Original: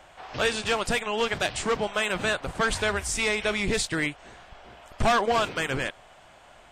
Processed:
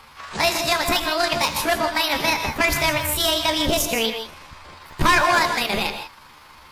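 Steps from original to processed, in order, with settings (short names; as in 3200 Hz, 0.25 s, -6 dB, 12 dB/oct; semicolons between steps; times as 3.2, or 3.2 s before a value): delay-line pitch shifter +7 st; non-linear reverb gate 0.19 s rising, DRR 6.5 dB; gain +6 dB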